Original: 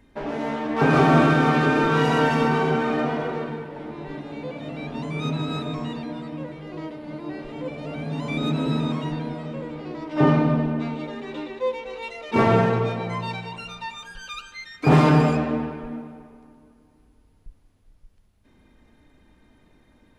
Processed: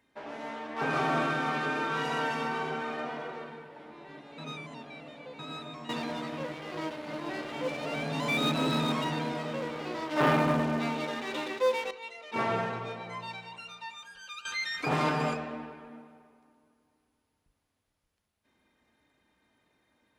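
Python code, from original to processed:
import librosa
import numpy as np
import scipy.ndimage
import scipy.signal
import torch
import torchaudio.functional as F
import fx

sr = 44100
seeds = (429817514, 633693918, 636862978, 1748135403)

y = fx.leveller(x, sr, passes=3, at=(5.89, 11.91))
y = fx.env_flatten(y, sr, amount_pct=50, at=(14.45, 15.34))
y = fx.edit(y, sr, fx.reverse_span(start_s=4.38, length_s=1.01), tone=tone)
y = scipy.signal.sosfilt(scipy.signal.butter(2, 74.0, 'highpass', fs=sr, output='sos'), y)
y = fx.low_shelf(y, sr, hz=420.0, db=-11.0)
y = fx.hum_notches(y, sr, base_hz=50, count=9)
y = y * librosa.db_to_amplitude(-7.0)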